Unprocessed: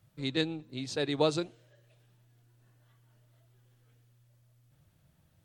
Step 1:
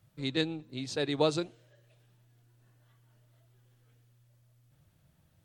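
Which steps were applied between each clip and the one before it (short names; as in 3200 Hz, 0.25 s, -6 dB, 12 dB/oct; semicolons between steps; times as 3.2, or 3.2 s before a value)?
nothing audible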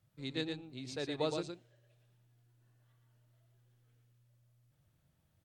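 echo 0.116 s -5.5 dB; gain -8 dB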